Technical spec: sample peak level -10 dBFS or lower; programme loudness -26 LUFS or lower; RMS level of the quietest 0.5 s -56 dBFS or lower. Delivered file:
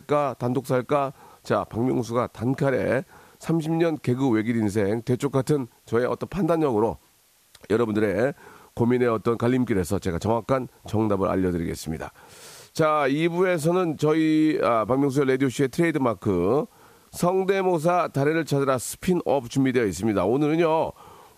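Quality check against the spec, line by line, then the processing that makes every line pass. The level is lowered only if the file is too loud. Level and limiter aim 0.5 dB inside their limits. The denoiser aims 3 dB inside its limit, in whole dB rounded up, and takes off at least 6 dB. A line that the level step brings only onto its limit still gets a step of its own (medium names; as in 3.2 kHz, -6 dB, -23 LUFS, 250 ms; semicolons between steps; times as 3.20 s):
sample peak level -8.5 dBFS: fail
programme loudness -23.5 LUFS: fail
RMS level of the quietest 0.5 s -60 dBFS: pass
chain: trim -3 dB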